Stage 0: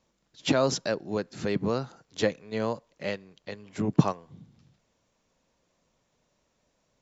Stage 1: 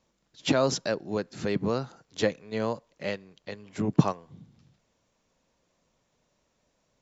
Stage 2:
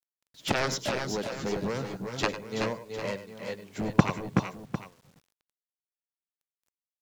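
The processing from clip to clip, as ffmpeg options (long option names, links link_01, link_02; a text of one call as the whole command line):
ffmpeg -i in.wav -af anull out.wav
ffmpeg -i in.wav -af "aeval=exprs='0.531*(cos(1*acos(clip(val(0)/0.531,-1,1)))-cos(1*PI/2))+0.15*(cos(7*acos(clip(val(0)/0.531,-1,1)))-cos(7*PI/2))':channel_layout=same,aecho=1:1:100|102|376|392|752:0.2|0.1|0.473|0.316|0.211,acrusher=bits=9:mix=0:aa=0.000001" out.wav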